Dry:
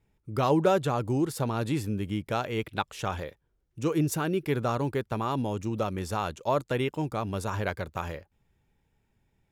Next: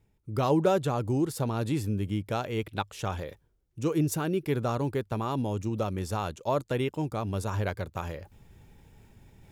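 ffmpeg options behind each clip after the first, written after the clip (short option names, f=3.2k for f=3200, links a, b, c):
-af "equalizer=f=1.7k:w=0.59:g=-3.5,areverse,acompressor=mode=upward:threshold=-39dB:ratio=2.5,areverse,equalizer=f=100:w=7:g=4"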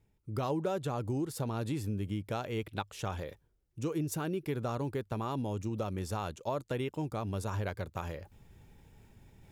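-af "acompressor=threshold=-28dB:ratio=3,volume=-3dB"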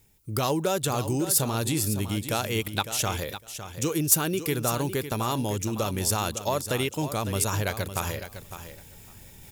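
-af "crystalizer=i=5.5:c=0,asoftclip=type=tanh:threshold=-14.5dB,aecho=1:1:556|1112:0.282|0.0423,volume=6dB"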